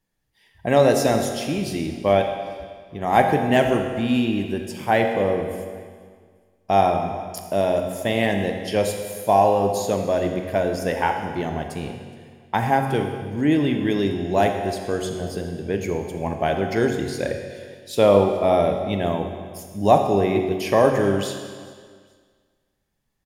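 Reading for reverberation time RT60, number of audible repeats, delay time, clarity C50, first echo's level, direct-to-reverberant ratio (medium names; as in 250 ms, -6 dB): 1.8 s, 2, 420 ms, 5.5 dB, -22.5 dB, 4.0 dB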